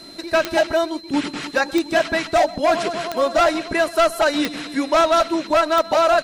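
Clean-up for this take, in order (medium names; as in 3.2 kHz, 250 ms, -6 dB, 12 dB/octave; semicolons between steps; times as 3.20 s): de-click; band-stop 4.1 kHz, Q 30; inverse comb 129 ms -20.5 dB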